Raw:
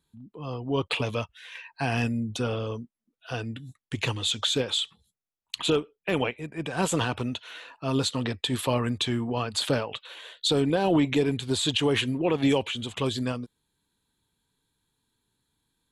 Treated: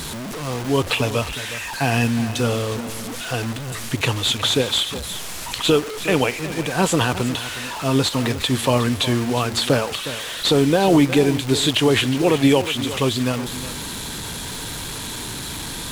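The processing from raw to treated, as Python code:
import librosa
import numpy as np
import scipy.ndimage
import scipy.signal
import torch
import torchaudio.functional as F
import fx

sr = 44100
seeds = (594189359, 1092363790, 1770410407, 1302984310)

p1 = fx.delta_mod(x, sr, bps=64000, step_db=-31.5)
p2 = p1 + fx.echo_single(p1, sr, ms=363, db=-13.5, dry=0)
p3 = fx.dmg_crackle(p2, sr, seeds[0], per_s=590.0, level_db=-36.0)
y = F.gain(torch.from_numpy(p3), 7.5).numpy()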